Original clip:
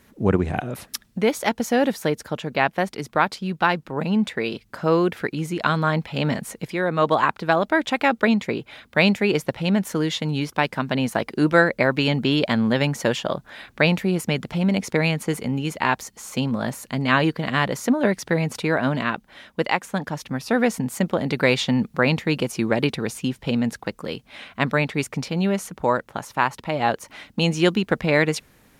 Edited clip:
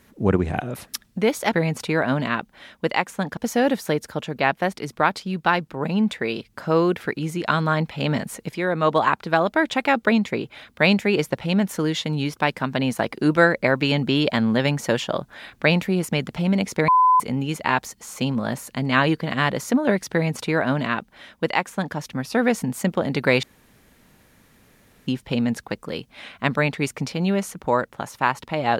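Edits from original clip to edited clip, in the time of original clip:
15.04–15.36 bleep 1010 Hz -12 dBFS
18.28–20.12 copy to 1.53
21.59–23.23 room tone

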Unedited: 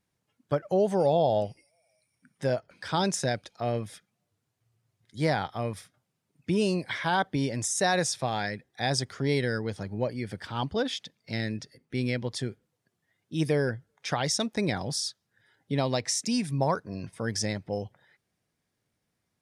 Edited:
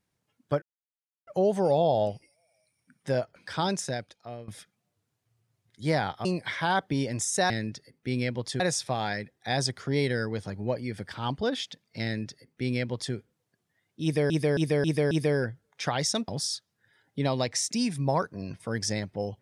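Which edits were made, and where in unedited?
0.62 insert silence 0.65 s
2.84–3.83 fade out, to -16.5 dB
5.6–6.68 cut
11.37–12.47 copy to 7.93
13.36–13.63 loop, 5 plays
14.53–14.81 cut

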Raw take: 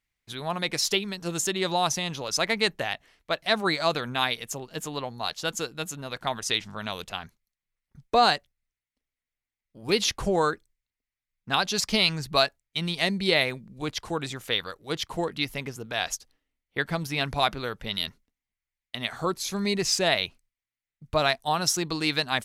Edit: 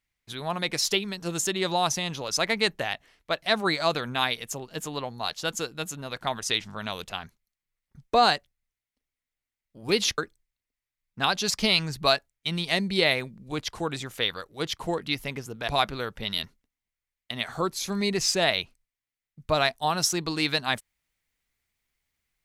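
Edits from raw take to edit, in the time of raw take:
10.18–10.48 cut
15.98–17.32 cut

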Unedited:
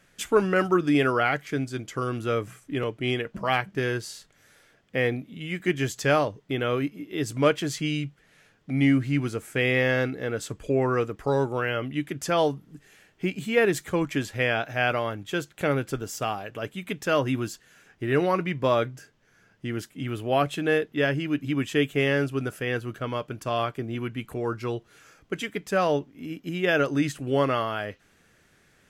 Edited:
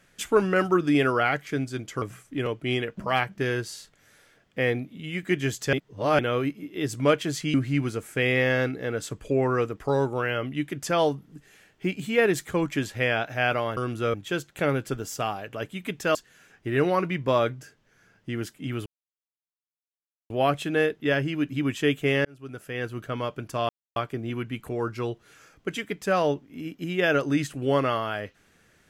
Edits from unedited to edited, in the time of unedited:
2.02–2.39 move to 15.16
6.1–6.56 reverse
7.91–8.93 cut
17.17–17.51 cut
20.22 insert silence 1.44 s
22.17–22.97 fade in
23.61 insert silence 0.27 s

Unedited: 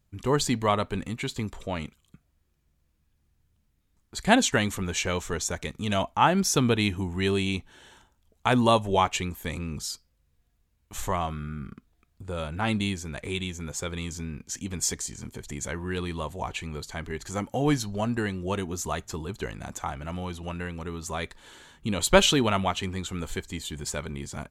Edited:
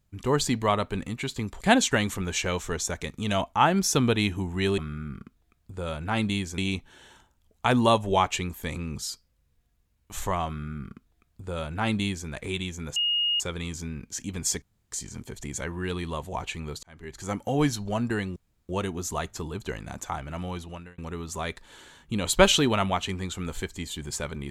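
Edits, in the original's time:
1.61–4.22 cut
11.29–13.09 copy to 7.39
13.77 add tone 2860 Hz -22 dBFS 0.44 s
14.99 insert room tone 0.30 s
16.9–17.4 fade in
18.43 insert room tone 0.33 s
20.31–20.72 fade out

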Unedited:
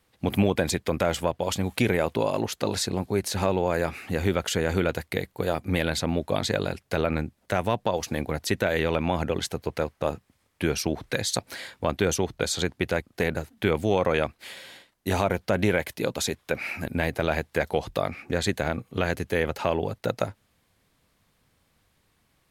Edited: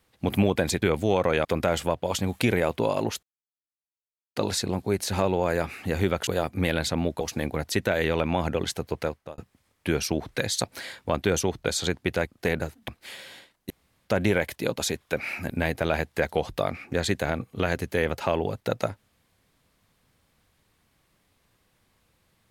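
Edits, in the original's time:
2.6 insert silence 1.13 s
4.51–5.38 cut
6.32–7.96 cut
9.76–10.13 fade out
13.63–14.26 move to 0.82
15.08–15.43 room tone

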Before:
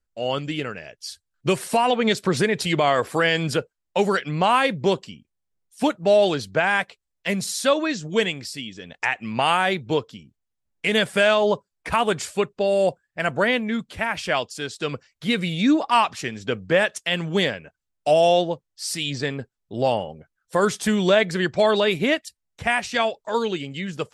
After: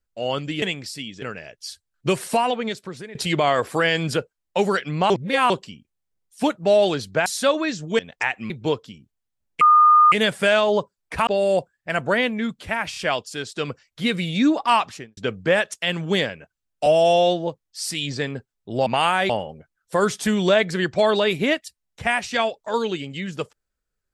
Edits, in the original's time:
1.77–2.55 fade out quadratic, to -17.5 dB
4.5–4.9 reverse
6.66–7.48 cut
8.21–8.81 move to 0.62
9.32–9.75 move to 19.9
10.86 add tone 1220 Hz -9.5 dBFS 0.51 s
12.01–12.57 cut
14.2 stutter 0.03 s, 3 plays
16.09–16.41 studio fade out
18.1–18.51 stretch 1.5×

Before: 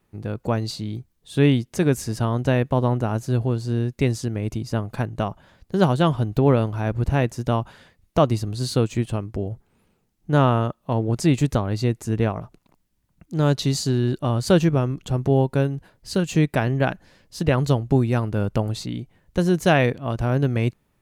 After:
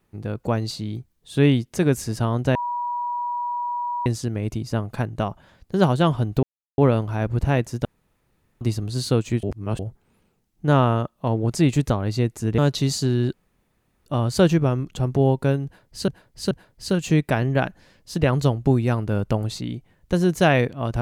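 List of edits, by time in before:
2.55–4.06 bleep 966 Hz -23.5 dBFS
6.43 insert silence 0.35 s
7.5–8.26 room tone
9.08–9.44 reverse
12.23–13.42 cut
14.17 insert room tone 0.73 s
15.76–16.19 loop, 3 plays

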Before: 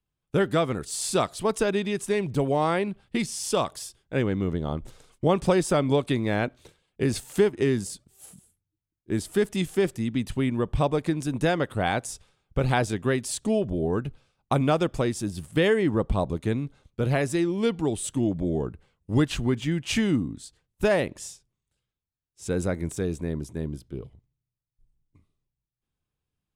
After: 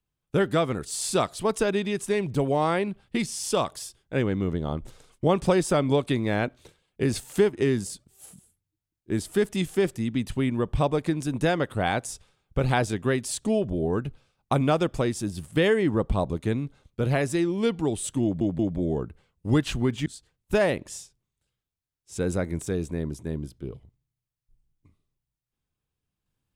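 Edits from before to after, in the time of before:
18.23 stutter 0.18 s, 3 plays
19.7–20.36 cut

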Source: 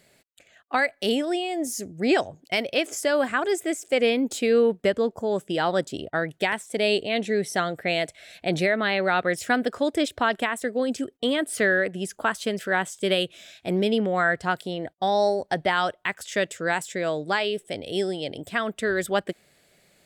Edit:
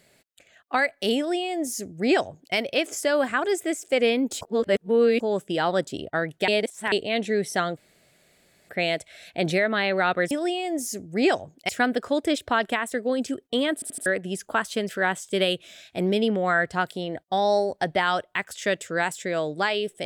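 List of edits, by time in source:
1.17–2.55 copy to 9.39
4.41–5.2 reverse
6.48–6.92 reverse
7.77 insert room tone 0.92 s
11.44 stutter in place 0.08 s, 4 plays

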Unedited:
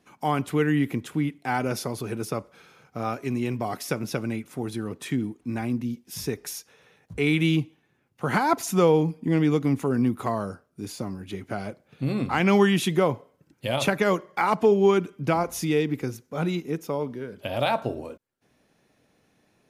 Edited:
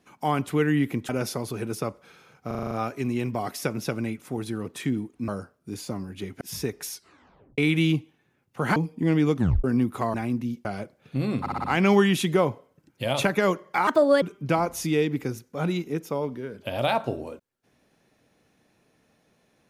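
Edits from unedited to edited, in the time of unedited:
1.09–1.59 cut
2.97 stutter 0.04 s, 7 plays
5.54–6.05 swap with 10.39–11.52
6.56 tape stop 0.66 s
8.4–9.01 cut
9.61 tape stop 0.28 s
12.27 stutter 0.06 s, 5 plays
14.5–15 speed 143%

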